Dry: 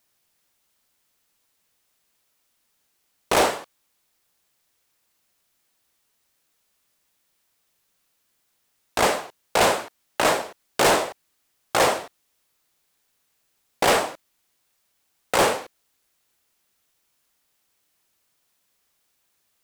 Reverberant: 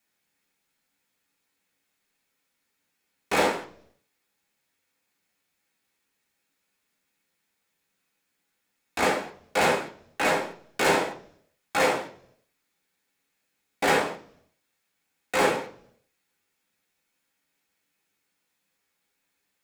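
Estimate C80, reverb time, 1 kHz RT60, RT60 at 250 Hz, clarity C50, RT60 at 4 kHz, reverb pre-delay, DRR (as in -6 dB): 17.0 dB, 0.50 s, 0.40 s, 0.75 s, 12.0 dB, 0.55 s, 3 ms, -4.5 dB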